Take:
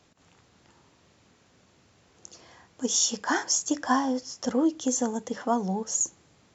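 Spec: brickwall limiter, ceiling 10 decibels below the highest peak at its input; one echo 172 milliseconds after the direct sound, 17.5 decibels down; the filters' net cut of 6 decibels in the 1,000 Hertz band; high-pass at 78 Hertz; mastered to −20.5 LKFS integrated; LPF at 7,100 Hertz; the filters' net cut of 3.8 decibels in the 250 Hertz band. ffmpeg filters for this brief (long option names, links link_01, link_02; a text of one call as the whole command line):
ffmpeg -i in.wav -af "highpass=78,lowpass=7100,equalizer=frequency=250:width_type=o:gain=-4,equalizer=frequency=1000:width_type=o:gain=-7.5,alimiter=limit=-23dB:level=0:latency=1,aecho=1:1:172:0.133,volume=12.5dB" out.wav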